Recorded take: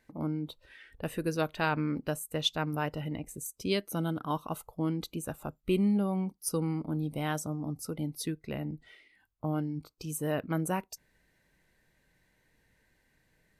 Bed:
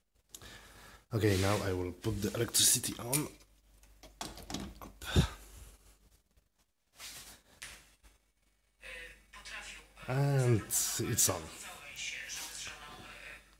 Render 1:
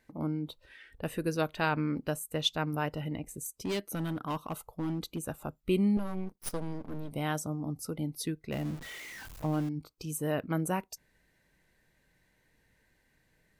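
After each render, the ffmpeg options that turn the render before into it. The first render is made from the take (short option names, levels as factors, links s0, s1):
-filter_complex "[0:a]asettb=1/sr,asplit=3[s0][s1][s2];[s0]atrim=end=3.414[s3];[s1]atrim=start=3.41:end=5.27,asetpts=PTS-STARTPTS,afade=t=in:d=0.004:c=qsin,afade=t=out:st=1.856:d=0.004:c=qsin,asoftclip=type=hard:threshold=0.0355[s4];[s2]atrim=start=5.266[s5];[s3][s4]acrossfade=d=0.004:c1=hsin:c2=qsin[s6];[s6][s5]acrossfade=d=0.004:c1=qsin:c2=hsin,asettb=1/sr,asplit=3[s7][s8][s9];[s7]atrim=end=5.974[s10];[s8]atrim=start=5.97:end=7.11,asetpts=PTS-STARTPTS,afade=t=in:d=0.004:c=qsin,afade=t=out:st=1.136:d=0.004:c=qsin,aeval=exprs='max(val(0),0)':c=same[s11];[s9]atrim=start=7.106[s12];[s10][s11]acrossfade=d=0.004:c1=hsin:c2=qsin[s13];[s13][s12]acrossfade=d=0.004:c1=qsin:c2=hsin,asettb=1/sr,asplit=3[s14][s15][s16];[s14]atrim=end=8.524[s17];[s15]atrim=start=8.52:end=9.69,asetpts=PTS-STARTPTS,afade=t=in:d=0.004:c=qsin,afade=t=out:st=1.166:d=0.004:c=qsin,aeval=exprs='val(0)+0.5*0.01*sgn(val(0))':c=same[s18];[s16]atrim=start=9.686[s19];[s17][s18]acrossfade=d=0.004:c1=hsin:c2=qsin[s20];[s20][s19]acrossfade=d=0.004:c1=qsin:c2=hsin"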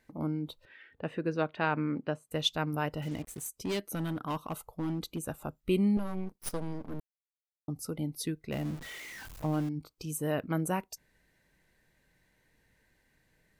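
-filter_complex "[0:a]asettb=1/sr,asplit=3[s0][s1][s2];[s0]atrim=end=0.654[s3];[s1]atrim=start=0.65:end=2.31,asetpts=PTS-STARTPTS,afade=t=in:d=0.004:c=qsin,afade=t=out:st=1.656:d=0.004:c=qsin,highpass=130,lowpass=2800[s4];[s2]atrim=start=2.306[s5];[s3][s4]acrossfade=d=0.004:c1=hsin:c2=qsin[s6];[s6][s5]acrossfade=d=0.004:c1=qsin:c2=hsin,asettb=1/sr,asplit=3[s7][s8][s9];[s7]atrim=end=3.024[s10];[s8]atrim=start=3.02:end=3.49,asetpts=PTS-STARTPTS,afade=t=in:d=0.004:c=qsin,afade=t=out:st=0.466:d=0.004:c=qsin,acrusher=bits=7:mix=0:aa=0.5[s11];[s9]atrim=start=3.486[s12];[s10][s11]acrossfade=d=0.004:c1=hsin:c2=qsin[s13];[s13][s12]acrossfade=d=0.004:c1=qsin:c2=hsin,asplit=3[s14][s15][s16];[s14]atrim=end=7,asetpts=PTS-STARTPTS,afade=t=out:st=6.996:d=0.004:c=hsin[s17];[s15]atrim=start=7:end=7.68,asetpts=PTS-STARTPTS,volume=0[s18];[s16]atrim=start=7.68,asetpts=PTS-STARTPTS,afade=t=in:d=0.004:c=hsin[s19];[s17][s18][s19]concat=n=3:v=0:a=1"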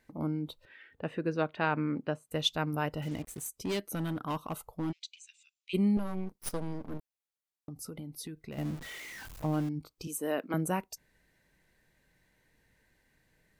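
-filter_complex "[0:a]asplit=3[s0][s1][s2];[s0]afade=t=out:st=4.91:d=0.02[s3];[s1]asuperpass=centerf=4200:order=12:qfactor=0.79,afade=t=in:st=4.91:d=0.02,afade=t=out:st=5.73:d=0.02[s4];[s2]afade=t=in:st=5.73:d=0.02[s5];[s3][s4][s5]amix=inputs=3:normalize=0,asettb=1/sr,asplit=3[s6][s7][s8];[s6]atrim=end=6.974[s9];[s7]atrim=start=6.97:end=8.58,asetpts=PTS-STARTPTS,afade=t=in:d=0.004:c=qsin,afade=t=out:st=1.606:d=0.004:c=qsin,acompressor=threshold=0.0126:ratio=6:attack=3.2:release=140:knee=1:detection=peak[s10];[s8]atrim=start=8.576[s11];[s9][s10]acrossfade=d=0.004:c1=hsin:c2=qsin[s12];[s12][s11]acrossfade=d=0.004:c1=qsin:c2=hsin,asettb=1/sr,asplit=3[s13][s14][s15];[s13]atrim=end=10.074[s16];[s14]atrim=start=10.07:end=10.54,asetpts=PTS-STARTPTS,afade=t=in:d=0.004:c=qsin,afade=t=out:st=0.466:d=0.004:c=qsin,highpass=f=240:w=0.5412,highpass=f=240:w=1.3066[s17];[s15]atrim=start=10.536[s18];[s16][s17]acrossfade=d=0.004:c1=hsin:c2=qsin[s19];[s19][s18]acrossfade=d=0.004:c1=qsin:c2=hsin"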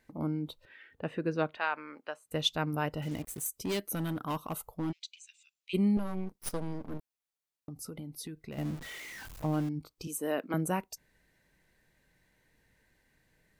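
-filter_complex "[0:a]asettb=1/sr,asplit=3[s0][s1][s2];[s0]atrim=end=1.574[s3];[s1]atrim=start=1.57:end=2.26,asetpts=PTS-STARTPTS,afade=t=in:d=0.004:c=qsin,afade=t=out:st=0.686:d=0.004:c=qsin,highpass=770[s4];[s2]atrim=start=2.256[s5];[s3][s4]acrossfade=d=0.004:c1=hsin:c2=qsin[s6];[s6][s5]acrossfade=d=0.004:c1=qsin:c2=hsin,asettb=1/sr,asplit=3[s7][s8][s9];[s7]atrim=end=3.094[s10];[s8]atrim=start=3.09:end=4.74,asetpts=PTS-STARTPTS,afade=t=in:d=0.004:c=qsin,afade=t=out:st=1.646:d=0.004:c=qsin,highshelf=f=11000:g=10[s11];[s9]atrim=start=4.736[s12];[s10][s11]acrossfade=d=0.004:c1=hsin:c2=qsin[s13];[s13][s12]acrossfade=d=0.004:c1=qsin:c2=hsin"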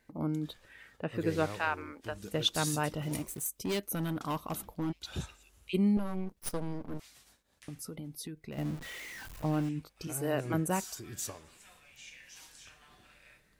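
-filter_complex "[1:a]volume=0.299[s0];[0:a][s0]amix=inputs=2:normalize=0"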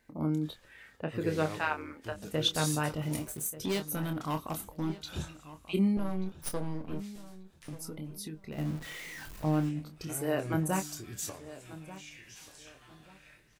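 -filter_complex "[0:a]asplit=2[s0][s1];[s1]adelay=26,volume=0.422[s2];[s0][s2]amix=inputs=2:normalize=0,asplit=2[s3][s4];[s4]adelay=1186,lowpass=f=3300:p=1,volume=0.158,asplit=2[s5][s6];[s6]adelay=1186,lowpass=f=3300:p=1,volume=0.27,asplit=2[s7][s8];[s8]adelay=1186,lowpass=f=3300:p=1,volume=0.27[s9];[s3][s5][s7][s9]amix=inputs=4:normalize=0"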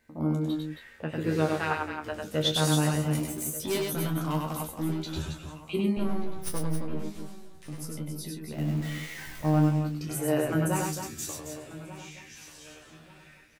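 -filter_complex "[0:a]asplit=2[s0][s1];[s1]adelay=13,volume=0.562[s2];[s0][s2]amix=inputs=2:normalize=0,aecho=1:1:99.13|271.1:0.708|0.398"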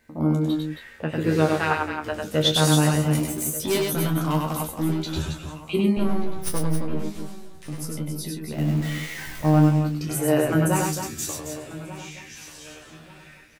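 -af "volume=2"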